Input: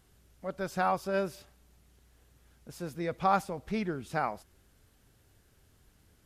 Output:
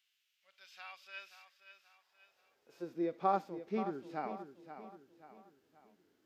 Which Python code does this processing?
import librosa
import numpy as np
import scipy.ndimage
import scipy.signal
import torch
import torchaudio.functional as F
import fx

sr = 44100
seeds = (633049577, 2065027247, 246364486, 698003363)

y = fx.peak_eq(x, sr, hz=9800.0, db=-14.5, octaves=0.67)
y = fx.hpss(y, sr, part='percussive', gain_db=-14)
y = fx.filter_sweep_highpass(y, sr, from_hz=2700.0, to_hz=300.0, start_s=1.24, end_s=2.94, q=2.6)
y = fx.echo_feedback(y, sr, ms=530, feedback_pct=42, wet_db=-11.0)
y = y * librosa.db_to_amplitude(-4.5)